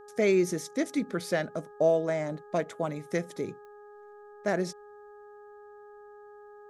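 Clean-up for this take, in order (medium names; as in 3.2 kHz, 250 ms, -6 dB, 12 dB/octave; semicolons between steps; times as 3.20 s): de-click; de-hum 414.4 Hz, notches 4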